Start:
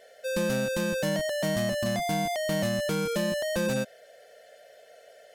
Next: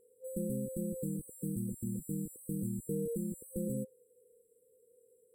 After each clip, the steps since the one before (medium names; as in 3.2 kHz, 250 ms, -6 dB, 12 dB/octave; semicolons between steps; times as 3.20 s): FFT band-reject 520–7600 Hz; trim -6 dB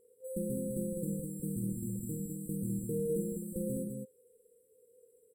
loudspeakers at several distances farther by 17 m -7 dB, 70 m -5 dB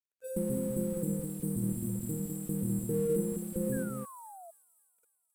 crossover distortion -56 dBFS; painted sound fall, 3.72–4.51 s, 650–1700 Hz -53 dBFS; feedback echo behind a high-pass 266 ms, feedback 53%, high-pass 5.2 kHz, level -7 dB; trim +4 dB